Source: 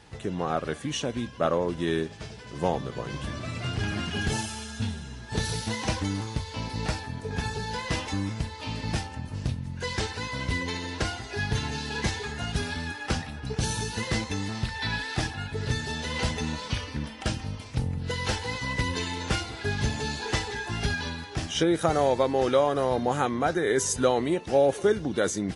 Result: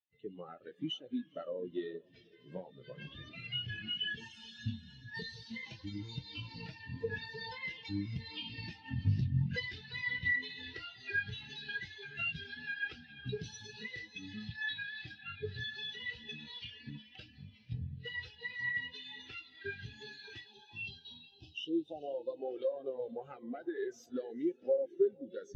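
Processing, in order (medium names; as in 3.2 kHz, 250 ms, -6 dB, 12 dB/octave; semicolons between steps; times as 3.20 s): self-modulated delay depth 0.14 ms; Doppler pass-by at 9.50 s, 10 m/s, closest 7.1 m; in parallel at -10.5 dB: integer overflow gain 22 dB; on the sum: frequency weighting D; compression 12:1, threshold -46 dBFS, peak gain reduction 26 dB; time-frequency box 20.52–22.37 s, 1.1–2.5 kHz -14 dB; on a send: echo that smears into a reverb 456 ms, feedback 47%, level -9 dB; on the sum: flange 0.93 Hz, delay 1.9 ms, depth 9.8 ms, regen -53%; bass shelf 160 Hz +3.5 dB; spectral contrast expander 2.5:1; trim +15 dB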